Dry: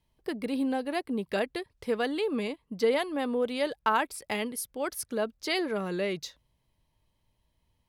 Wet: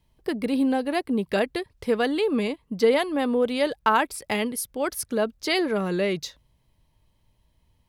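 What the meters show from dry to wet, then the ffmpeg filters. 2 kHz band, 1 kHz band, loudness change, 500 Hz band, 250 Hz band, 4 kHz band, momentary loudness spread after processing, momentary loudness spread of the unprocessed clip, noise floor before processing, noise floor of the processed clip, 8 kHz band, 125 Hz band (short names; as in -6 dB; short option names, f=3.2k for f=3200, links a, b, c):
+5.0 dB, +5.0 dB, +6.0 dB, +5.5 dB, +6.5 dB, +5.0 dB, 7 LU, 7 LU, -76 dBFS, -68 dBFS, +5.0 dB, +7.5 dB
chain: -af "lowshelf=f=220:g=4,volume=5dB"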